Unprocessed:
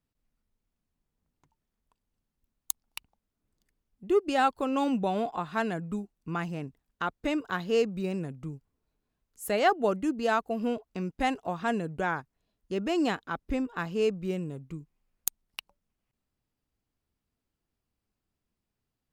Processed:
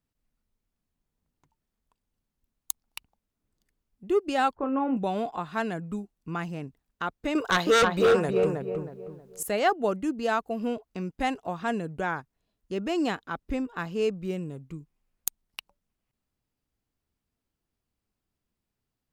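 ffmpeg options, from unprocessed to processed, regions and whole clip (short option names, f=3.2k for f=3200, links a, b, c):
-filter_complex "[0:a]asettb=1/sr,asplit=3[a][b][c];[a]atrim=end=4.554[d];[b]atrim=start=4.55:end=4.97,asetpts=PTS-STARTPTS,afade=t=in:d=0.004:c=qsin,afade=t=out:st=0.416:d=0.004:c=qsin,lowpass=f=1.9k:w=0.5412,lowpass=f=1.9k:w=1.3066,asplit=2[e][f];[f]adelay=26,volume=-8.5dB[g];[e][g]amix=inputs=2:normalize=0,atrim=end_sample=18522[h];[c]atrim=start=4.966[i];[d][h]acrossfade=d=0.004:c1=hsin:c2=qsin[j];[j][i]acrossfade=d=0.004:c1=qsin:c2=hsin,asettb=1/sr,asplit=3[k][l][m];[k]atrim=end=7.354[n];[l]atrim=start=7.35:end=9.43,asetpts=PTS-STARTPTS,afade=t=in:d=0.004:c=qsin,afade=t=out:st=2.076:d=0.004:c=qsin,lowshelf=f=360:t=q:w=1.5:g=-8.5,asplit=2[o][p];[p]adelay=317,lowpass=f=1.4k:p=1,volume=-3.5dB,asplit=2[q][r];[r]adelay=317,lowpass=f=1.4k:p=1,volume=0.35,asplit=2[s][t];[t]adelay=317,lowpass=f=1.4k:p=1,volume=0.35,asplit=2[u][v];[v]adelay=317,lowpass=f=1.4k:p=1,volume=0.35,asplit=2[w][x];[x]adelay=317,lowpass=f=1.4k:p=1,volume=0.35[y];[o][q][s][u][w][y]amix=inputs=6:normalize=0,atrim=end_sample=91728,aeval=exprs='0.168*sin(PI/2*2.82*val(0)/0.168)':c=same[z];[m]atrim=start=9.426[aa];[n][z]acrossfade=d=0.004:c1=hsin:c2=qsin[ab];[ab][aa]acrossfade=d=0.004:c1=qsin:c2=hsin"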